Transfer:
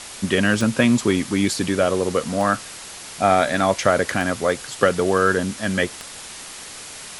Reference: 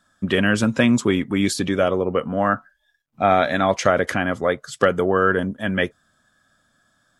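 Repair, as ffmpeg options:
ffmpeg -i in.wav -af "adeclick=threshold=4,afwtdn=0.02" out.wav

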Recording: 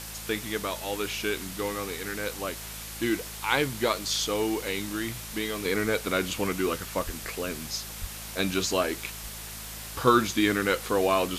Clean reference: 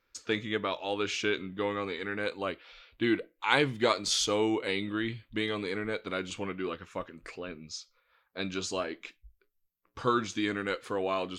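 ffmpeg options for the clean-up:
ffmpeg -i in.wav -filter_complex "[0:a]bandreject=frequency=53.9:width_type=h:width=4,bandreject=frequency=107.8:width_type=h:width=4,bandreject=frequency=161.7:width_type=h:width=4,bandreject=frequency=215.6:width_type=h:width=4,asplit=3[link_01][link_02][link_03];[link_01]afade=type=out:start_time=7.05:duration=0.02[link_04];[link_02]highpass=frequency=140:width=0.5412,highpass=frequency=140:width=1.3066,afade=type=in:start_time=7.05:duration=0.02,afade=type=out:start_time=7.17:duration=0.02[link_05];[link_03]afade=type=in:start_time=7.17:duration=0.02[link_06];[link_04][link_05][link_06]amix=inputs=3:normalize=0,asplit=3[link_07][link_08][link_09];[link_07]afade=type=out:start_time=8:duration=0.02[link_10];[link_08]highpass=frequency=140:width=0.5412,highpass=frequency=140:width=1.3066,afade=type=in:start_time=8:duration=0.02,afade=type=out:start_time=8.12:duration=0.02[link_11];[link_09]afade=type=in:start_time=8.12:duration=0.02[link_12];[link_10][link_11][link_12]amix=inputs=3:normalize=0,afwtdn=0.011,asetnsamples=nb_out_samples=441:pad=0,asendcmd='5.65 volume volume -7dB',volume=0dB" out.wav

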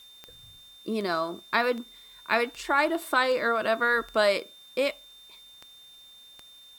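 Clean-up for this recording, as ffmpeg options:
ffmpeg -i in.wav -af "adeclick=threshold=4,bandreject=frequency=3600:width=30,agate=range=-21dB:threshold=-44dB" out.wav

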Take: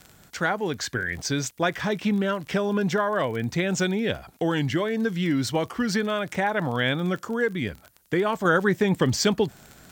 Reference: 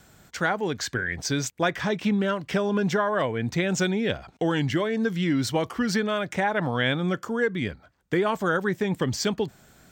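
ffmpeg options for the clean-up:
ffmpeg -i in.wav -af "adeclick=threshold=4,agate=range=-21dB:threshold=-43dB,asetnsamples=nb_out_samples=441:pad=0,asendcmd='8.45 volume volume -4dB',volume=0dB" out.wav

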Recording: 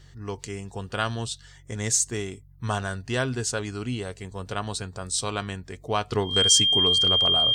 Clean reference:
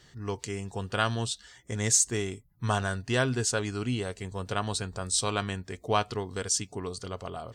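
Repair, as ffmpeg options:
ffmpeg -i in.wav -af "bandreject=frequency=46.9:width_type=h:width=4,bandreject=frequency=93.8:width_type=h:width=4,bandreject=frequency=140.7:width_type=h:width=4,bandreject=frequency=3200:width=30,asetnsamples=nb_out_samples=441:pad=0,asendcmd='6.12 volume volume -8dB',volume=0dB" out.wav

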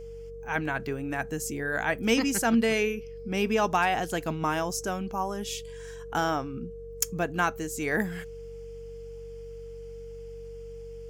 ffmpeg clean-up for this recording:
ffmpeg -i in.wav -af "bandreject=frequency=47.2:width_type=h:width=4,bandreject=frequency=94.4:width_type=h:width=4,bandreject=frequency=141.6:width_type=h:width=4,bandreject=frequency=188.8:width_type=h:width=4,bandreject=frequency=460:width=30" out.wav

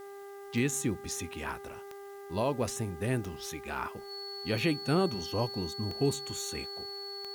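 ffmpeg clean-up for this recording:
ffmpeg -i in.wav -af "adeclick=threshold=4,bandreject=frequency=399.3:width_type=h:width=4,bandreject=frequency=798.6:width_type=h:width=4,bandreject=frequency=1197.9:width_type=h:width=4,bandreject=frequency=1597.2:width_type=h:width=4,bandreject=frequency=1996.5:width_type=h:width=4,bandreject=frequency=4400:width=30,agate=range=-21dB:threshold=-38dB" out.wav

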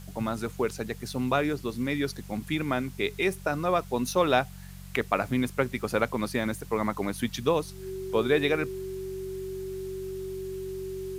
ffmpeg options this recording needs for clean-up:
ffmpeg -i in.wav -af "bandreject=frequency=46.5:width_type=h:width=4,bandreject=frequency=93:width_type=h:width=4,bandreject=frequency=139.5:width_type=h:width=4,bandreject=frequency=186:width_type=h:width=4,bandreject=frequency=380:width=30,afwtdn=0.0022" out.wav

